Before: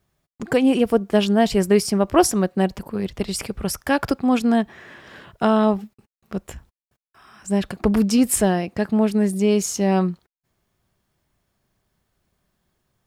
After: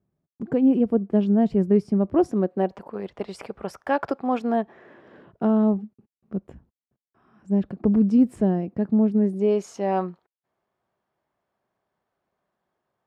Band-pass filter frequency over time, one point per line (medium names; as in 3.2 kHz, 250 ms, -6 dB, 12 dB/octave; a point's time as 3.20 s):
band-pass filter, Q 0.94
2.19 s 220 Hz
2.79 s 720 Hz
4.35 s 720 Hz
5.62 s 230 Hz
9.13 s 230 Hz
9.65 s 750 Hz